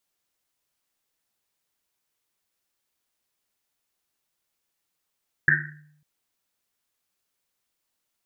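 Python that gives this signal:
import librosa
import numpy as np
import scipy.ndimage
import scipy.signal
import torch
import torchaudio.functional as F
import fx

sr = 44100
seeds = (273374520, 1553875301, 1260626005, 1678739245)

y = fx.risset_drum(sr, seeds[0], length_s=0.55, hz=150.0, decay_s=0.86, noise_hz=1700.0, noise_width_hz=360.0, noise_pct=70)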